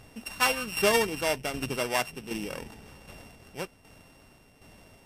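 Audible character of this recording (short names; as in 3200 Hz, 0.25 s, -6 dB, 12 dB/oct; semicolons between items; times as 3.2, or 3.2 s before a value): a buzz of ramps at a fixed pitch in blocks of 16 samples; tremolo saw down 1.3 Hz, depth 60%; MP3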